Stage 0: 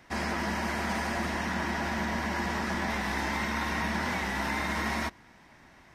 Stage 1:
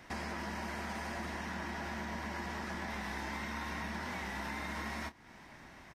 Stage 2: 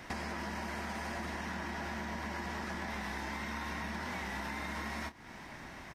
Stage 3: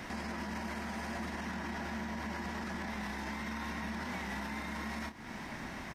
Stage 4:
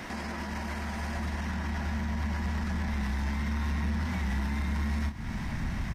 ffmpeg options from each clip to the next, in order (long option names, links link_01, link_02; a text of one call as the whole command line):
ffmpeg -i in.wav -filter_complex "[0:a]acompressor=threshold=-43dB:ratio=3,asplit=2[link_01][link_02];[link_02]adelay=28,volume=-13dB[link_03];[link_01][link_03]amix=inputs=2:normalize=0,volume=1.5dB" out.wav
ffmpeg -i in.wav -af "acompressor=threshold=-42dB:ratio=6,volume=6dB" out.wav
ffmpeg -i in.wav -af "equalizer=frequency=220:width=2.6:gain=5.5,alimiter=level_in=11dB:limit=-24dB:level=0:latency=1,volume=-11dB,volume=4dB" out.wav
ffmpeg -i in.wav -af "asubboost=boost=10:cutoff=130,asoftclip=type=tanh:threshold=-27dB,volume=4dB" out.wav